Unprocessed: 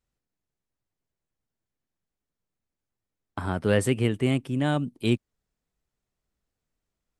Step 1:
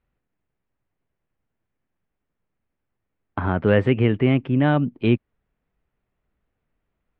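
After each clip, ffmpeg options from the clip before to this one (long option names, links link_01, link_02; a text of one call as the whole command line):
ffmpeg -i in.wav -filter_complex "[0:a]asplit=2[link_01][link_02];[link_02]alimiter=limit=-19dB:level=0:latency=1:release=84,volume=-1.5dB[link_03];[link_01][link_03]amix=inputs=2:normalize=0,lowpass=frequency=2700:width=0.5412,lowpass=frequency=2700:width=1.3066,volume=2.5dB" out.wav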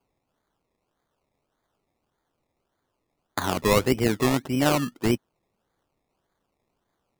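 ffmpeg -i in.wav -af "aemphasis=mode=production:type=bsi,acrusher=samples=23:mix=1:aa=0.000001:lfo=1:lforange=13.8:lforate=1.7" out.wav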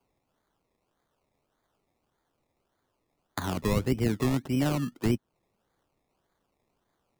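ffmpeg -i in.wav -filter_complex "[0:a]acrossover=split=260[link_01][link_02];[link_02]acompressor=threshold=-34dB:ratio=2.5[link_03];[link_01][link_03]amix=inputs=2:normalize=0" out.wav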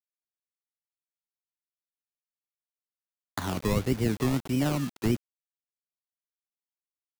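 ffmpeg -i in.wav -af "acrusher=bits=6:mix=0:aa=0.000001" out.wav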